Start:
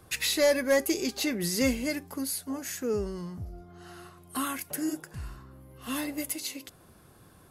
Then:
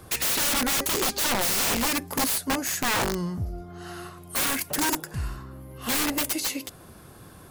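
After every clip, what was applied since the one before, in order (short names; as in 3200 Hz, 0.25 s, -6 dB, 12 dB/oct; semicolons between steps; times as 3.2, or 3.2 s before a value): wrapped overs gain 28 dB; gain +8.5 dB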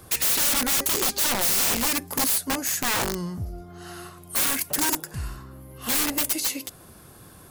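high shelf 5100 Hz +6 dB; gain -1.5 dB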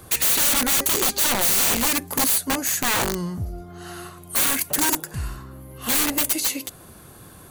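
notch 5200 Hz, Q 11; gain +3 dB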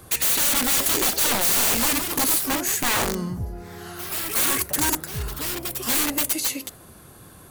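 echoes that change speed 0.456 s, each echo +3 st, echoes 2, each echo -6 dB; gain -1.5 dB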